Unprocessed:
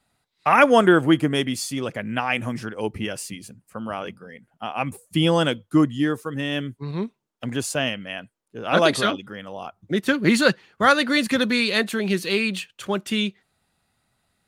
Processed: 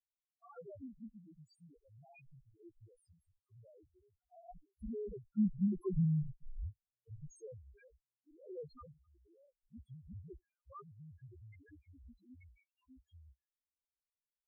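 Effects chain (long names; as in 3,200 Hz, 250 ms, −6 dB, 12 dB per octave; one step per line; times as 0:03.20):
source passing by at 0:06.01, 22 m/s, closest 2.7 metres
frequency shifter −120 Hz
spectral peaks only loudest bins 1
level +5.5 dB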